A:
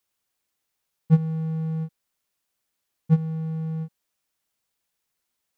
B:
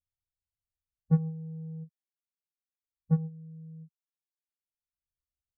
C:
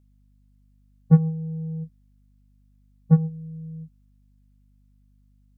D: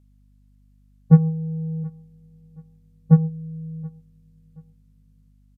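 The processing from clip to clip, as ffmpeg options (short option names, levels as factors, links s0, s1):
-filter_complex "[0:a]agate=range=0.282:threshold=0.0501:ratio=16:detection=peak,afftdn=nr=33:nf=-39,acrossover=split=100[s0][s1];[s0]acompressor=mode=upward:threshold=0.00316:ratio=2.5[s2];[s2][s1]amix=inputs=2:normalize=0,volume=0.501"
-af "aeval=exprs='val(0)+0.000447*(sin(2*PI*50*n/s)+sin(2*PI*2*50*n/s)/2+sin(2*PI*3*50*n/s)/3+sin(2*PI*4*50*n/s)/4+sin(2*PI*5*50*n/s)/5)':c=same,volume=2.82"
-af "aecho=1:1:726|1452:0.0668|0.0234,aresample=32000,aresample=44100,volume=1.41"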